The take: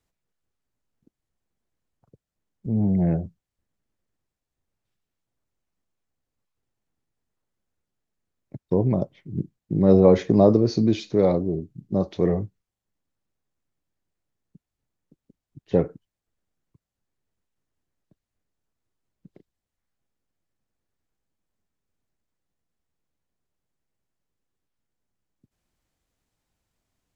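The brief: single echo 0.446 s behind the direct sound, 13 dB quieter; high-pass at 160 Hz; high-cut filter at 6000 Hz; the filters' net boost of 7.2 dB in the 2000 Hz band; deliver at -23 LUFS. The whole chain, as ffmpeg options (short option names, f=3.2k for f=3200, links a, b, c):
-af "highpass=160,lowpass=6k,equalizer=f=2k:t=o:g=8.5,aecho=1:1:446:0.224,volume=-0.5dB"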